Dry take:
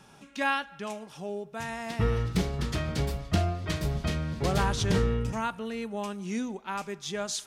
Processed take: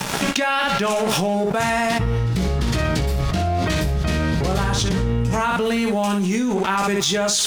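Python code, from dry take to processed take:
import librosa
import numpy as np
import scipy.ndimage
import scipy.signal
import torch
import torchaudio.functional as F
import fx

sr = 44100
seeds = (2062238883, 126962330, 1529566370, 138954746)

y = np.sign(x) * np.maximum(np.abs(x) - 10.0 ** (-53.0 / 20.0), 0.0)
y = fx.high_shelf(y, sr, hz=9700.0, db=5.0, at=(5.6, 6.55))
y = fx.room_early_taps(y, sr, ms=(16, 60), db=(-6.0, -7.5))
y = fx.env_flatten(y, sr, amount_pct=100)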